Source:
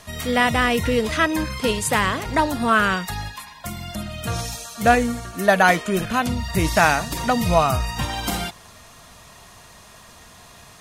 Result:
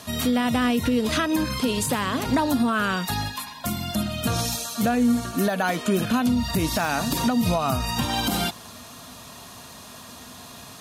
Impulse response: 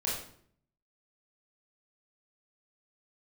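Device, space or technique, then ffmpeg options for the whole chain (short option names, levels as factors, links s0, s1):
broadcast voice chain: -af "highpass=78,equalizer=f=250:t=o:w=0.33:g=10,equalizer=f=2000:t=o:w=0.33:g=-6,equalizer=f=4000:t=o:w=0.33:g=-3,equalizer=f=12500:t=o:w=0.33:g=6,deesser=0.4,acompressor=threshold=0.126:ratio=6,equalizer=f=4000:t=o:w=0.44:g=6,alimiter=limit=0.158:level=0:latency=1:release=193,volume=1.41"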